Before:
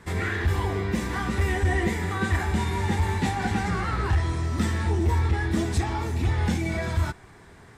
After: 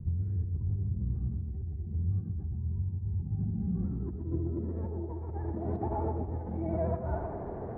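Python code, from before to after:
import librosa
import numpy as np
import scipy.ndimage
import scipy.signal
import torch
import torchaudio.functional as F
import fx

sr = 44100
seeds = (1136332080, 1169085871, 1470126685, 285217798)

y = fx.high_shelf(x, sr, hz=2900.0, db=-11.0)
y = fx.rev_schroeder(y, sr, rt60_s=0.59, comb_ms=26, drr_db=12.5)
y = fx.over_compress(y, sr, threshold_db=-35.0, ratio=-1.0)
y = fx.filter_sweep_lowpass(y, sr, from_hz=120.0, to_hz=650.0, start_s=3.13, end_s=5.13, q=2.2)
y = fx.echo_tape(y, sr, ms=123, feedback_pct=53, wet_db=-3.5, lp_hz=1200.0, drive_db=23.0, wow_cents=36)
y = fx.vibrato(y, sr, rate_hz=13.0, depth_cents=57.0)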